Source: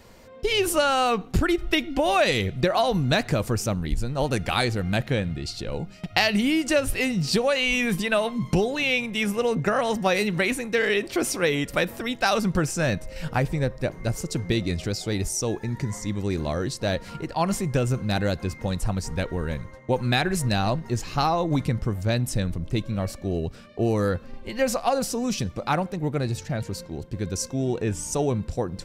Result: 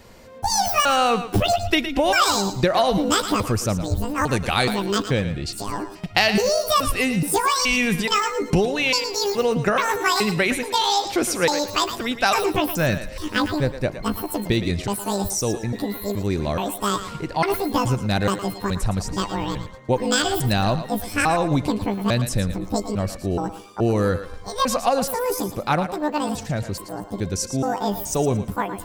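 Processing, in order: trilling pitch shifter +12 st, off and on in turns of 0.425 s; thinning echo 0.113 s, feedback 27%, high-pass 380 Hz, level -10 dB; gain +3 dB

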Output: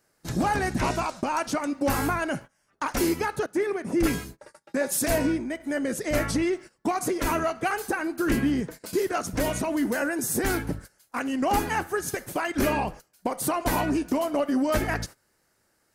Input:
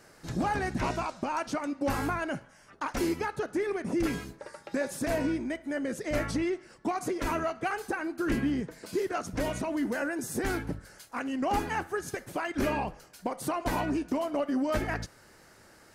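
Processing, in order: gate -44 dBFS, range -19 dB; high shelf 9200 Hz +12 dB; 3.46–5.6 three-band expander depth 70%; gain +4.5 dB

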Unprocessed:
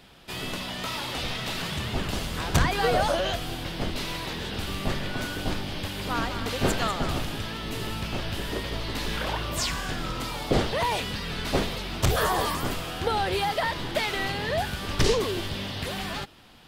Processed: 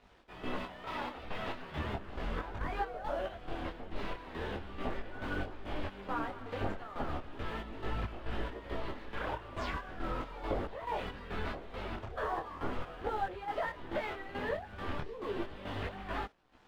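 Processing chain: LPF 1600 Hz 12 dB/oct; bell 140 Hz -11 dB 1.1 oct; compressor 12:1, threshold -31 dBFS, peak gain reduction 13.5 dB; crossover distortion -58.5 dBFS; chopper 2.3 Hz, depth 65%, duty 50%; detuned doubles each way 13 cents; gain +4 dB

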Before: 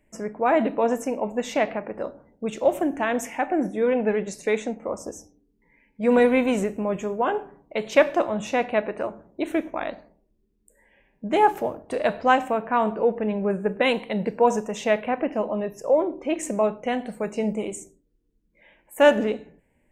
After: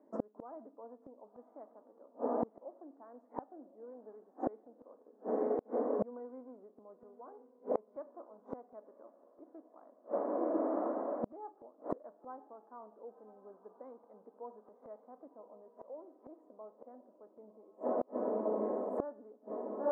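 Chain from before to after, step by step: block floating point 5-bit; elliptic band-pass 250–1200 Hz, stop band 40 dB; on a send: diffused feedback echo 1.073 s, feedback 51%, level -14 dB; on the sum: flipped gate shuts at -28 dBFS, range -35 dB; gain +6.5 dB

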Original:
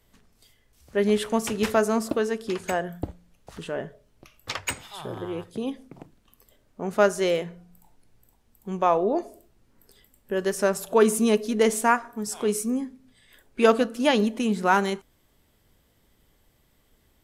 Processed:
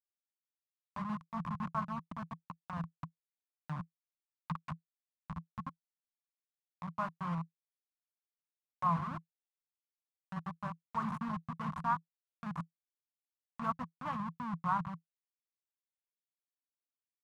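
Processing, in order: level-crossing sampler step -18 dBFS; in parallel at -9 dB: Schmitt trigger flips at -28 dBFS; on the sum: double band-pass 420 Hz, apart 2.7 oct; mismatched tape noise reduction encoder only; gain -2.5 dB

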